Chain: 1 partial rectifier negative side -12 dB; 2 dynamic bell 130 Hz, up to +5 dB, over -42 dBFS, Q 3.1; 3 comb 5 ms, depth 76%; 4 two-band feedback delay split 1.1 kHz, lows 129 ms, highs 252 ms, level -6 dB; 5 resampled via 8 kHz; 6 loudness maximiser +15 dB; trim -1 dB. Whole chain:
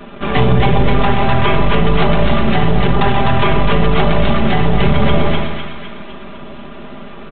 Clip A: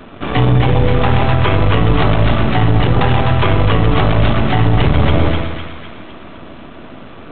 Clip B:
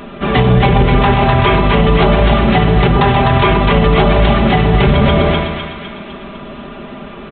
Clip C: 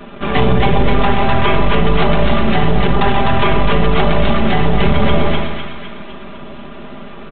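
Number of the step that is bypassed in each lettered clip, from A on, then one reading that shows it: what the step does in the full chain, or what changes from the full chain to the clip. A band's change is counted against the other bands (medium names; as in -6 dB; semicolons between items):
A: 3, momentary loudness spread change -12 LU; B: 1, distortion -4 dB; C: 2, 125 Hz band -2.0 dB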